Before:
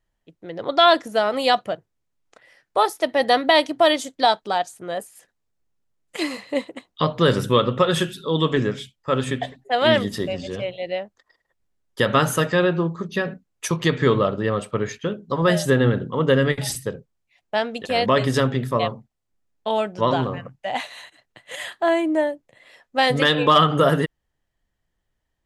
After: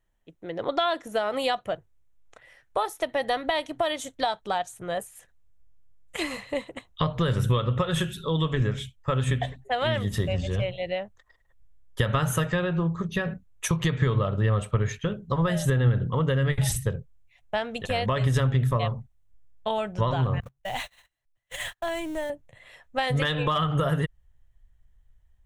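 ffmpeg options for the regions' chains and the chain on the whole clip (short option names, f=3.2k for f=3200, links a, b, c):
-filter_complex "[0:a]asettb=1/sr,asplit=3[a][b][c];[a]atrim=end=20.404[d];[b]atrim=start=20.4:end=22.3,asetpts=PTS-STARTPTS,afade=t=in:d=0.004:c=qsin,afade=t=out:st=1.896:d=0.004:c=qsin,aeval=exprs='val(0)+0.5*0.0168*sgn(val(0))':c=same,acrossover=split=130|3000[e][f][g];[f]acompressor=threshold=-32dB:ratio=2:attack=3.2:release=140:knee=2.83:detection=peak[h];[e][h][g]amix=inputs=3:normalize=0,agate=range=-46dB:threshold=-33dB:ratio=16:release=100:detection=peak[i];[c]atrim=start=22.296[j];[d][i]acrossfade=d=0.004:c1=hsin:c2=qsin[k];[k][j]acrossfade=d=0.004:c1=qsin:c2=hsin,equalizer=f=4.8k:t=o:w=0.3:g=-10,acompressor=threshold=-22dB:ratio=6,asubboost=boost=11:cutoff=82"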